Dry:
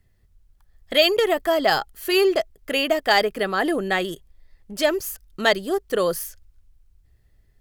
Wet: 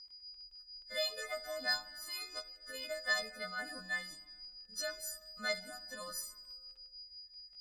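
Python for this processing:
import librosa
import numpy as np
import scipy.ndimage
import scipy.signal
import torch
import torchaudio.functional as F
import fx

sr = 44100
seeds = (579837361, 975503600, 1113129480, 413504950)

y = fx.freq_snap(x, sr, grid_st=3)
y = fx.tone_stack(y, sr, knobs='5-5-5')
y = y + 10.0 ** (-39.0 / 20.0) * np.sin(2.0 * np.pi * 4900.0 * np.arange(len(y)) / sr)
y = fx.fixed_phaser(y, sr, hz=560.0, stages=8)
y = fx.dmg_crackle(y, sr, seeds[0], per_s=12.0, level_db=-48.0)
y = fx.air_absorb(y, sr, metres=88.0)
y = fx.rev_fdn(y, sr, rt60_s=1.6, lf_ratio=1.2, hf_ratio=0.6, size_ms=29.0, drr_db=13.5)
y = fx.comb_cascade(y, sr, direction='rising', hz=0.48)
y = y * 10.0 ** (1.0 / 20.0)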